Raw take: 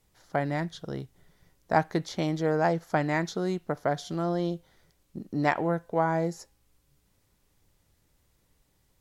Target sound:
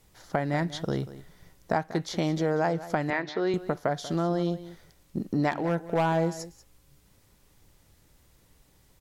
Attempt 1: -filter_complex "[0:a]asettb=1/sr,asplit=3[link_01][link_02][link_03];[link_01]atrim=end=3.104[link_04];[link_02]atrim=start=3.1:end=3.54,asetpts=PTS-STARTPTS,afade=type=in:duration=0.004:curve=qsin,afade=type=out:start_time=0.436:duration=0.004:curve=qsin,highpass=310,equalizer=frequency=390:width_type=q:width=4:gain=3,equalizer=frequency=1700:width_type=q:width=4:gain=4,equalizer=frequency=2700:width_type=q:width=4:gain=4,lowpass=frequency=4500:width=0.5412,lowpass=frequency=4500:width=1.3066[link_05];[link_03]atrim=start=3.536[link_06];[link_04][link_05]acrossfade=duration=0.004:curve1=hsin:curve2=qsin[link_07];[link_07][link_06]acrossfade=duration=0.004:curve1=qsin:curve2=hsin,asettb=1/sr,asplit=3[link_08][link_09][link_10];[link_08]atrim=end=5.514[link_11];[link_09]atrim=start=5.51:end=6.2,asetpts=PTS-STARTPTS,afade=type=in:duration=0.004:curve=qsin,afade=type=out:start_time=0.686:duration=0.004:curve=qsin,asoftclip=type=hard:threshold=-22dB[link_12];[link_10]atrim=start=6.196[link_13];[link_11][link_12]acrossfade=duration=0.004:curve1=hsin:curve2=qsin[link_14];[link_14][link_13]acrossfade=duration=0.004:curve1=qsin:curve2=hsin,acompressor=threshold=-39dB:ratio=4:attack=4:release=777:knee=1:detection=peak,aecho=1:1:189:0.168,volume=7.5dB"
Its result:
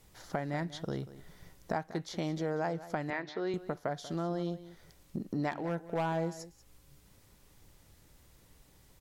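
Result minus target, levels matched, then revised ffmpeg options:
downward compressor: peak gain reduction +7.5 dB
-filter_complex "[0:a]asettb=1/sr,asplit=3[link_01][link_02][link_03];[link_01]atrim=end=3.104[link_04];[link_02]atrim=start=3.1:end=3.54,asetpts=PTS-STARTPTS,afade=type=in:duration=0.004:curve=qsin,afade=type=out:start_time=0.436:duration=0.004:curve=qsin,highpass=310,equalizer=frequency=390:width_type=q:width=4:gain=3,equalizer=frequency=1700:width_type=q:width=4:gain=4,equalizer=frequency=2700:width_type=q:width=4:gain=4,lowpass=frequency=4500:width=0.5412,lowpass=frequency=4500:width=1.3066[link_05];[link_03]atrim=start=3.536[link_06];[link_04][link_05]acrossfade=duration=0.004:curve1=hsin:curve2=qsin[link_07];[link_07][link_06]acrossfade=duration=0.004:curve1=qsin:curve2=hsin,asettb=1/sr,asplit=3[link_08][link_09][link_10];[link_08]atrim=end=5.514[link_11];[link_09]atrim=start=5.51:end=6.2,asetpts=PTS-STARTPTS,afade=type=in:duration=0.004:curve=qsin,afade=type=out:start_time=0.686:duration=0.004:curve=qsin,asoftclip=type=hard:threshold=-22dB[link_12];[link_10]atrim=start=6.196[link_13];[link_11][link_12]acrossfade=duration=0.004:curve1=hsin:curve2=qsin[link_14];[link_14][link_13]acrossfade=duration=0.004:curve1=qsin:curve2=hsin,acompressor=threshold=-29dB:ratio=4:attack=4:release=777:knee=1:detection=peak,aecho=1:1:189:0.168,volume=7.5dB"

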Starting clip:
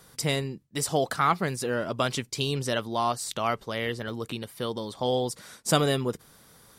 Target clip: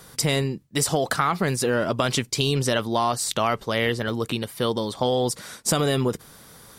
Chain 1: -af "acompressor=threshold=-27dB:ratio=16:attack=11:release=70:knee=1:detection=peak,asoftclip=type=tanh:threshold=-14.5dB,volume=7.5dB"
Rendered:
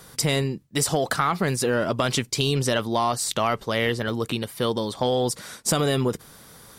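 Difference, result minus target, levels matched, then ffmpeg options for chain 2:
soft clipping: distortion +21 dB
-af "acompressor=threshold=-27dB:ratio=16:attack=11:release=70:knee=1:detection=peak,asoftclip=type=tanh:threshold=-3.5dB,volume=7.5dB"

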